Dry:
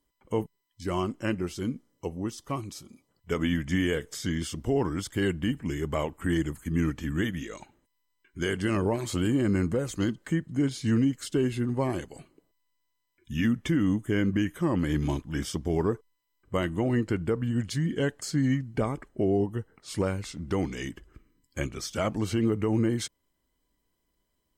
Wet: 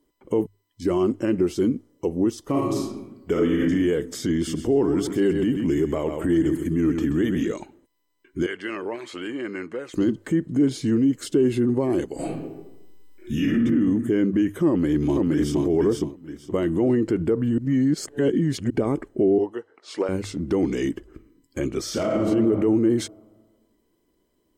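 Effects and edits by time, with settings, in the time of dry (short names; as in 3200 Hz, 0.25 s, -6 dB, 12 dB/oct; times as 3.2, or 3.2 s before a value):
2.43–3.69 reverb throw, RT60 0.9 s, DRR -2 dB
4.34–7.52 feedback echo 0.13 s, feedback 36%, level -11.5 dB
8.46–9.94 band-pass 2100 Hz, Q 1.3
12.15–13.63 reverb throw, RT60 0.95 s, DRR -12 dB
14.69–15.63 echo throw 0.47 s, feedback 20%, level -4 dB
17.58–18.7 reverse
19.38–20.09 BPF 610–5400 Hz
21.82–22.24 reverb throw, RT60 1.5 s, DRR -3.5 dB
whole clip: limiter -25 dBFS; bell 350 Hz +13 dB 1.5 oct; notches 50/100 Hz; gain +3 dB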